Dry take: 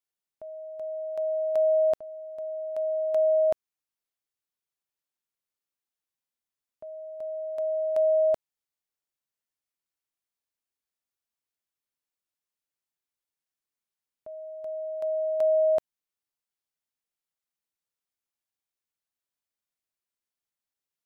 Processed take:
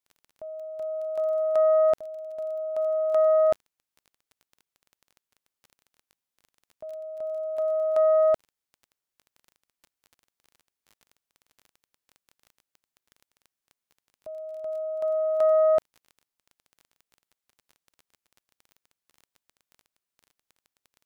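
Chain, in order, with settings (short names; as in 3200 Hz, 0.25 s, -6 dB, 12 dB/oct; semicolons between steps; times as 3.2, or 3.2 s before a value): self-modulated delay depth 0.078 ms; crackle 17/s -43 dBFS; gain +2.5 dB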